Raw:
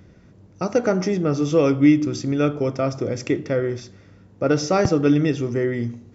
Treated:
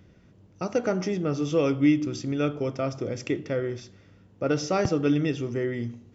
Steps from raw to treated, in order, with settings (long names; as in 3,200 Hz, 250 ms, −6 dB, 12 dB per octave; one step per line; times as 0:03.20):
parametric band 3,000 Hz +5.5 dB 0.49 octaves
level −6 dB